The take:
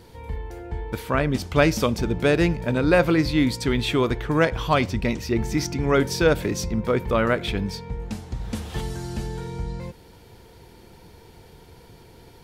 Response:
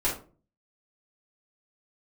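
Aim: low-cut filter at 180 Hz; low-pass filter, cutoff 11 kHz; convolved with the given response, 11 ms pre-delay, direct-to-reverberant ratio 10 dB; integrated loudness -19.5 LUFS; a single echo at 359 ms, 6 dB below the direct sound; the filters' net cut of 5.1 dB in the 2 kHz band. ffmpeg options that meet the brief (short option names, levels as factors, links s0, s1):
-filter_complex "[0:a]highpass=180,lowpass=11000,equalizer=f=2000:t=o:g=-7,aecho=1:1:359:0.501,asplit=2[s0][s1];[1:a]atrim=start_sample=2205,adelay=11[s2];[s1][s2]afir=irnorm=-1:irlink=0,volume=0.1[s3];[s0][s3]amix=inputs=2:normalize=0,volume=1.5"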